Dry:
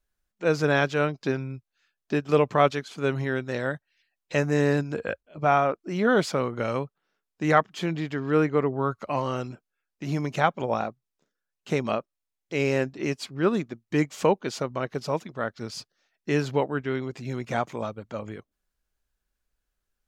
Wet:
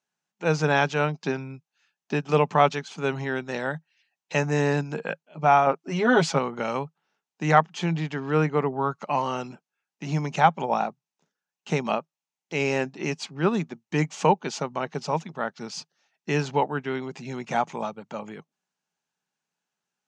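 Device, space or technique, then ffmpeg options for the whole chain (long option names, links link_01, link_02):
television speaker: -filter_complex "[0:a]asettb=1/sr,asplit=3[link_01][link_02][link_03];[link_01]atrim=end=5.664[link_04];[link_02]atrim=start=5.66:end=6.39,asetpts=PTS-STARTPTS,afade=type=in:duration=0.004:curve=qsin,afade=type=out:start_time=0.726:duration=0.004:curve=qsin,aecho=1:1:7.4:0.8,atrim=end_sample=32193[link_05];[link_03]atrim=start=6.386[link_06];[link_04][link_05]acrossfade=duration=0.004:curve1=hsin:curve2=qsin[link_07];[link_07][link_06]acrossfade=duration=0.004:curve1=qsin:curve2=hsin,highpass=frequency=160:width=0.5412,highpass=frequency=160:width=1.3066,equalizer=frequency=160:width_type=q:width=4:gain=9,equalizer=frequency=310:width_type=q:width=4:gain=-4,equalizer=frequency=530:width_type=q:width=4:gain=-3,equalizer=frequency=850:width_type=q:width=4:gain=9,equalizer=frequency=2700:width_type=q:width=4:gain=4,equalizer=frequency=6200:width_type=q:width=4:gain=5,lowpass=frequency=8300:width=0.5412,lowpass=frequency=8300:width=1.3066"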